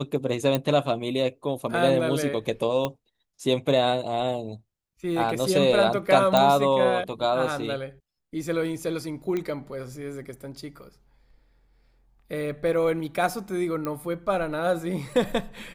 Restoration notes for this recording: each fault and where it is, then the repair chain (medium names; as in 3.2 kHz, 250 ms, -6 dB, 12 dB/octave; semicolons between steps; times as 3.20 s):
0.55 s: pop -10 dBFS
2.85 s: pop -13 dBFS
6.37 s: pop -7 dBFS
9.37 s: pop -17 dBFS
13.85 s: pop -17 dBFS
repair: de-click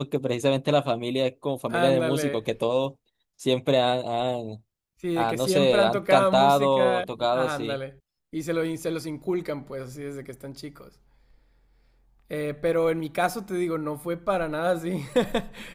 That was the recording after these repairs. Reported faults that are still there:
2.85 s: pop